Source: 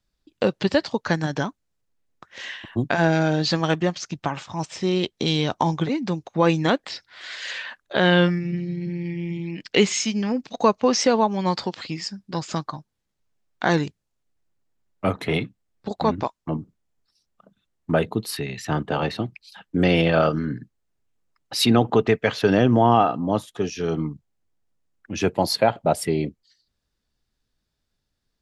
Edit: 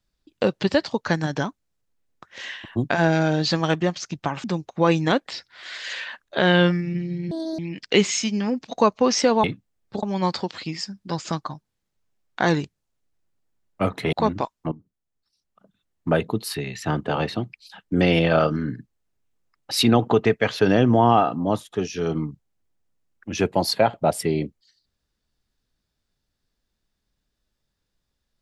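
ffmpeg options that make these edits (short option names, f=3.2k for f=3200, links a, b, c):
-filter_complex "[0:a]asplit=8[a][b][c][d][e][f][g][h];[a]atrim=end=4.442[i];[b]atrim=start=6.018:end=8.894[j];[c]atrim=start=8.89:end=9.41,asetpts=PTS-STARTPTS,asetrate=82908,aresample=44100[k];[d]atrim=start=9.406:end=11.262[l];[e]atrim=start=15.358:end=15.952[m];[f]atrim=start=11.258:end=15.362[n];[g]atrim=start=15.948:end=16.54,asetpts=PTS-STARTPTS,afade=t=out:st=0.588:d=0.004:c=hsin:silence=0.16788[o];[h]atrim=start=16.54,asetpts=PTS-STARTPTS,afade=t=in:d=1.37:silence=0.16788[p];[i][j]acrossfade=d=0.004:c1=hsin:c2=hsin[q];[q][k]acrossfade=d=0.004:c1=hsin:c2=hsin[r];[r][l]acrossfade=d=0.004:c1=hsin:c2=hsin[s];[s][m]acrossfade=d=0.004:c1=hsin:c2=hsin[t];[t][n]acrossfade=d=0.004:c1=hsin:c2=hsin[u];[o][p]concat=n=2:v=0:a=1[v];[u][v]acrossfade=d=0.004:c1=hsin:c2=hsin"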